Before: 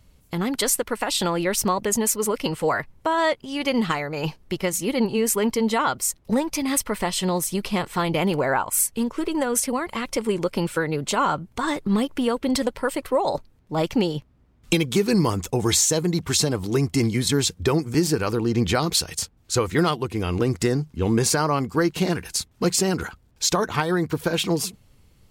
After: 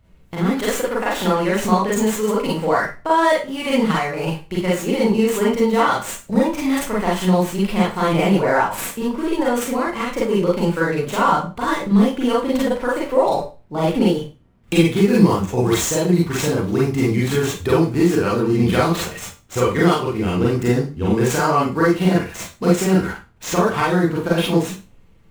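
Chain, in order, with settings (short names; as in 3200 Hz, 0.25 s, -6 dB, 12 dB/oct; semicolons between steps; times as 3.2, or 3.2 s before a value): median filter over 9 samples; Schroeder reverb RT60 0.31 s, combs from 33 ms, DRR -6 dB; gain -1.5 dB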